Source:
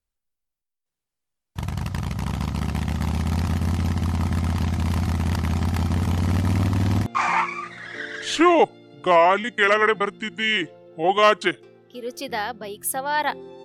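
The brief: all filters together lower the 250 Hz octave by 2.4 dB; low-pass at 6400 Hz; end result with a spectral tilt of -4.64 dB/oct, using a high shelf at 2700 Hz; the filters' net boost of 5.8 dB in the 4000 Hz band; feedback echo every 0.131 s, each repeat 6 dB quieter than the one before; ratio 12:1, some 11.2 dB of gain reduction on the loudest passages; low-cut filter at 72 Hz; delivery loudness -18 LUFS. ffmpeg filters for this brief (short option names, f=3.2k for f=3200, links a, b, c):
-af "highpass=72,lowpass=6.4k,equalizer=f=250:t=o:g=-3.5,highshelf=f=2.7k:g=6.5,equalizer=f=4k:t=o:g=3.5,acompressor=threshold=-22dB:ratio=12,aecho=1:1:131|262|393|524|655|786:0.501|0.251|0.125|0.0626|0.0313|0.0157,volume=8.5dB"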